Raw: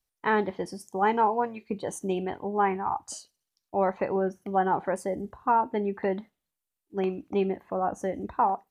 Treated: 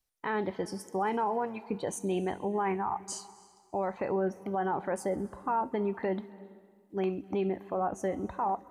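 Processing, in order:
brickwall limiter −22.5 dBFS, peak gain reduction 9.5 dB
delay with a high-pass on its return 67 ms, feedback 78%, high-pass 3,100 Hz, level −21 dB
on a send at −20 dB: convolution reverb RT60 1.8 s, pre-delay 240 ms

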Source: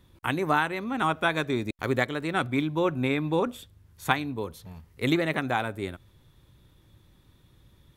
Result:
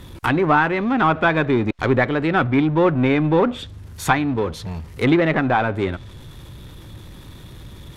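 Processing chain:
power curve on the samples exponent 0.7
treble cut that deepens with the level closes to 2,400 Hz, closed at −19.5 dBFS
level +4 dB

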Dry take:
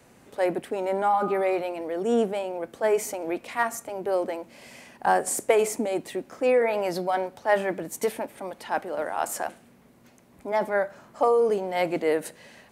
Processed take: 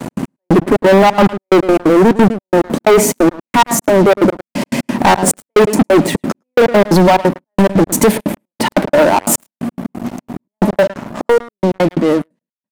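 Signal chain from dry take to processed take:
fade-out on the ending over 3.86 s
low shelf with overshoot 420 Hz +8 dB, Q 1.5
hollow resonant body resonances 200/590/920 Hz, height 10 dB, ringing for 20 ms
gate pattern "x.x...x.x.xx" 178 BPM −60 dB
in parallel at +1 dB: downward compressor 16 to 1, threshold −28 dBFS, peak gain reduction 22.5 dB
on the sum: high-pass filter 130 Hz 12 dB per octave
on a send: single-tap delay 108 ms −21 dB
on the sum: dynamic equaliser 240 Hz, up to −7 dB, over −33 dBFS, Q 4
leveller curve on the samples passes 5
level −2 dB

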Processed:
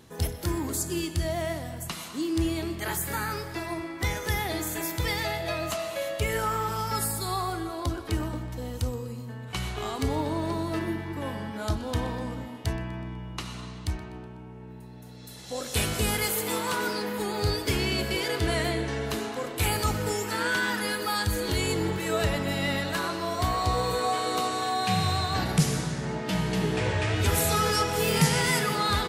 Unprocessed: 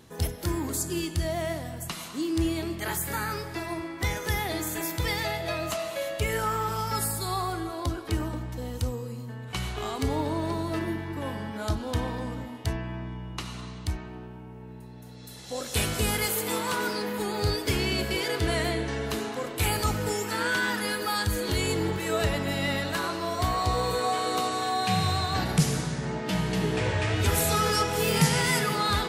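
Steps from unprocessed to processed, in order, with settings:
0:13.90–0:14.70: low-pass filter 10,000 Hz 12 dB per octave
on a send: repeating echo 124 ms, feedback 53%, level −19.5 dB

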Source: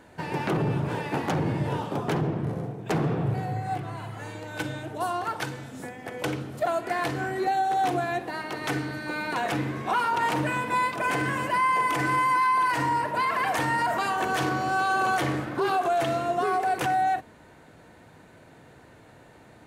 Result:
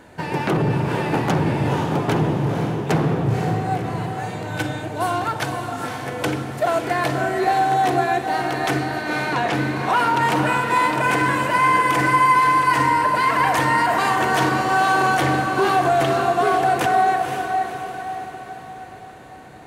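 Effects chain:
0:09.02–0:09.53: low-pass filter 6,000 Hz
on a send: feedback delay with all-pass diffusion 517 ms, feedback 50%, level −5.5 dB
on the sum: level +6 dB

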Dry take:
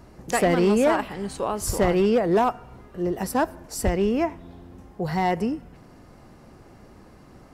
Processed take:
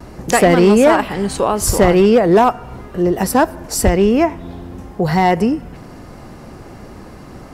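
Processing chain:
noise gate with hold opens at −41 dBFS
in parallel at −1 dB: downward compressor, threshold −30 dBFS, peak gain reduction 13 dB
on the sum: level +7.5 dB

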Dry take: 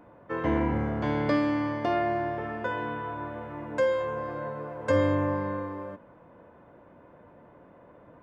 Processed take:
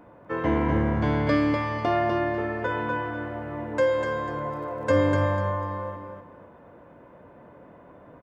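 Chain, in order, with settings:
0:04.30–0:05.18: surface crackle 21 per second −48 dBFS
on a send: repeating echo 247 ms, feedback 28%, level −5 dB
on the sum: level +2.5 dB

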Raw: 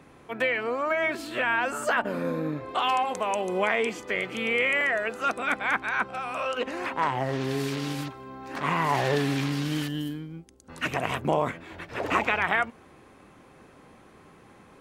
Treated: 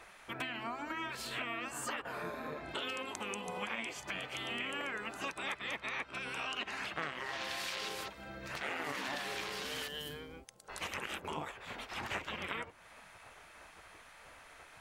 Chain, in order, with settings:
gate on every frequency bin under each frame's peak −10 dB weak
0:05.36–0:07.89: parametric band 3,200 Hz +5 dB 2.5 octaves
downward compressor 3 to 1, threshold −44 dBFS, peak gain reduction 15 dB
level +4 dB

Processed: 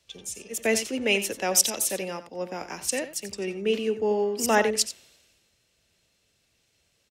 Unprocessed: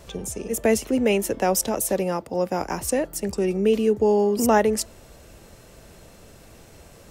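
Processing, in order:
meter weighting curve D
on a send: single-tap delay 90 ms −11.5 dB
on the sum: multiband upward and downward expander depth 70%
level −7 dB

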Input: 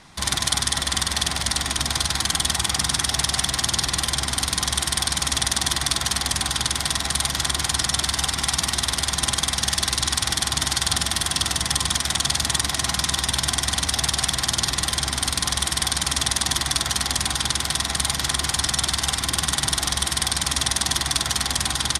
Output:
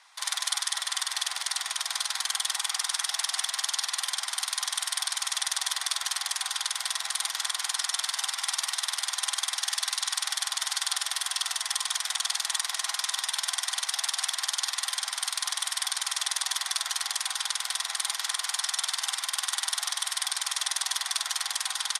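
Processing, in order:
high-pass filter 840 Hz 24 dB per octave
level −6.5 dB

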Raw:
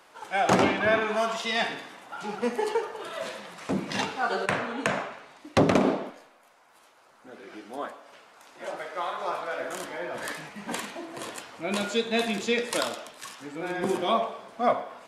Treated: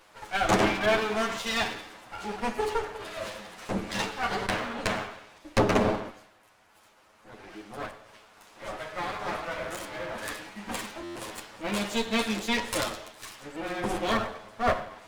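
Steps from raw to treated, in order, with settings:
lower of the sound and its delayed copy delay 9.4 ms
buffer that repeats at 0:11.03, samples 512, times 10

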